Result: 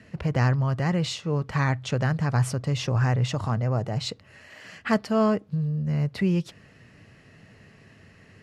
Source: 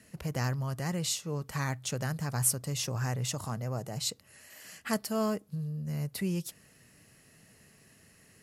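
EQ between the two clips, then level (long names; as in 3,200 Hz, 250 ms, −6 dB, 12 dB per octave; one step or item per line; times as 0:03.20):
low-pass filter 3,200 Hz 12 dB per octave
parametric band 100 Hz +6 dB 0.38 octaves
+8.5 dB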